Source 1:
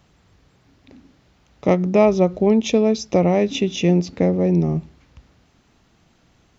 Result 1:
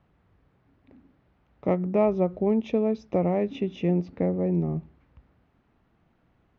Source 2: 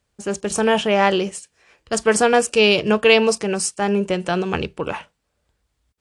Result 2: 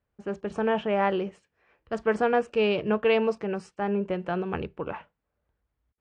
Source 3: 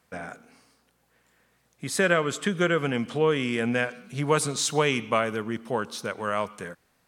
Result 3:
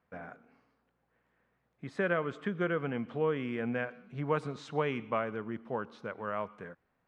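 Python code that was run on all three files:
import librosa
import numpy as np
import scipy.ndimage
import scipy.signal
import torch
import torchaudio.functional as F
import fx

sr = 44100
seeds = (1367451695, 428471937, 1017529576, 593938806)

y = scipy.signal.sosfilt(scipy.signal.butter(2, 1900.0, 'lowpass', fs=sr, output='sos'), x)
y = y * librosa.db_to_amplitude(-7.5)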